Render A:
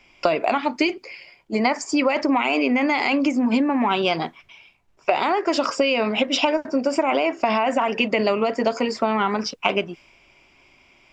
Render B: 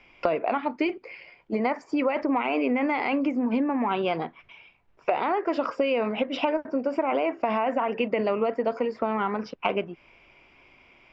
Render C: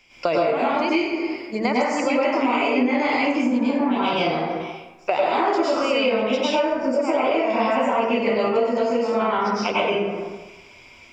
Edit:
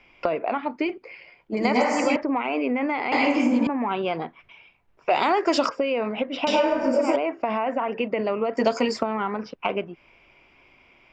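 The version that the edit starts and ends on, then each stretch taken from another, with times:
B
1.57–2.16 from C
3.12–3.67 from C
5.1–5.69 from A
6.47–7.16 from C
8.57–9.03 from A

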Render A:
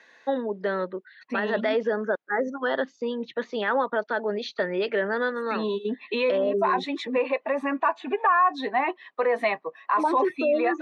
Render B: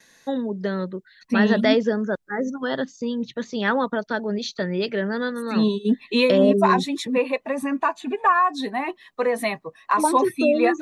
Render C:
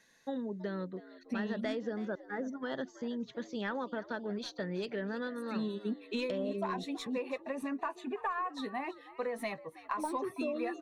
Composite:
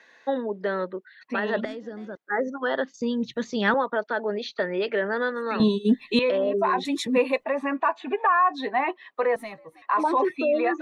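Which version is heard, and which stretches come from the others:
A
1.65–2.17 from C
2.94–3.74 from B
5.6–6.19 from B
6.85–7.44 from B
9.36–9.82 from C

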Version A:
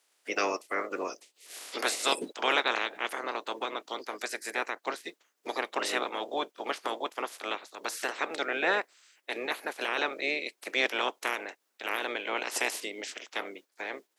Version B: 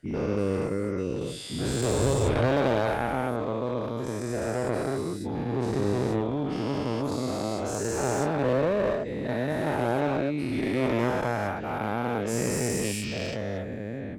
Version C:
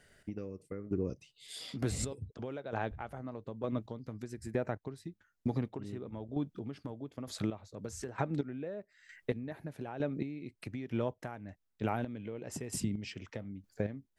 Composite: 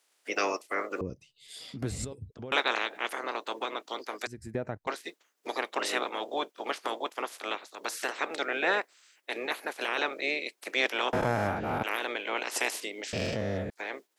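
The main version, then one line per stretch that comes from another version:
A
1.01–2.52 from C
4.27–4.87 from C
11.13–11.83 from B
13.13–13.7 from B

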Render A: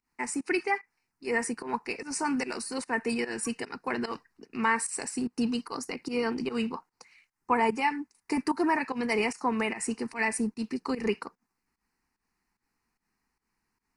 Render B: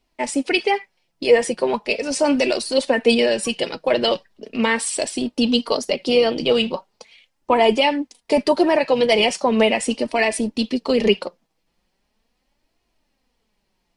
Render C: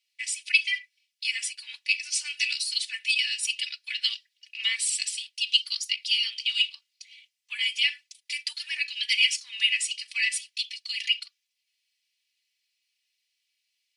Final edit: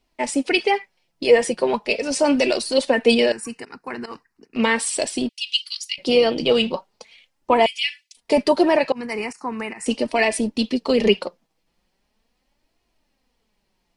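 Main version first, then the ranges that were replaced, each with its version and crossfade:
B
3.32–4.56 from A
5.29–5.98 from C
7.66–8.17 from C
8.92–9.86 from A

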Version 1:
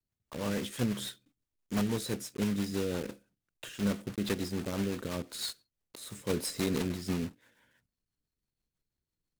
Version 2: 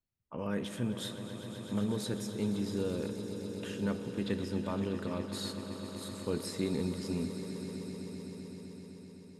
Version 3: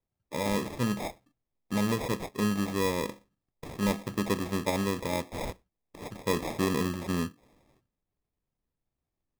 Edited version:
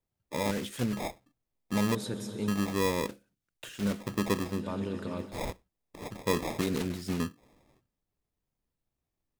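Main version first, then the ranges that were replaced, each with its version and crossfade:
3
0.51–0.93 from 1
1.95–2.48 from 2
3.08–4 from 1
4.53–5.29 from 2, crossfade 0.24 s
6.61–7.2 from 1

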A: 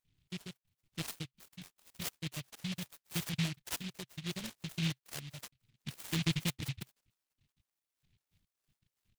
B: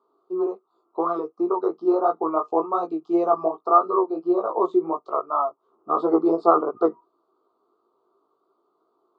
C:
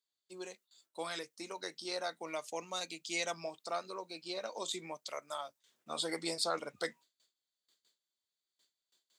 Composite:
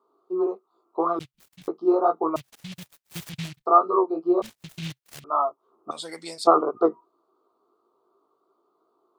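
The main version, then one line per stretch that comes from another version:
B
1.19–1.68 from A
2.36–3.66 from A
4.42–5.24 from A
5.91–6.47 from C

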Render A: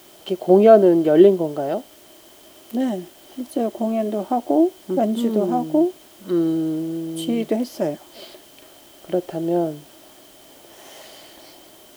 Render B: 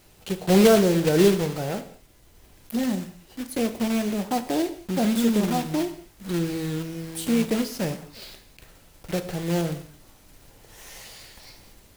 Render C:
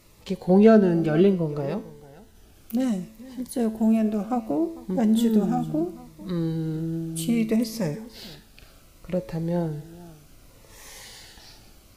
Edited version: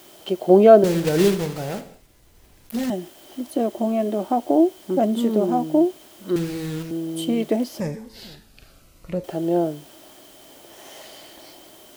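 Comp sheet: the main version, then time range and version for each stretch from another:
A
0.84–2.9 from B
6.36–6.91 from B
7.8–9.24 from C

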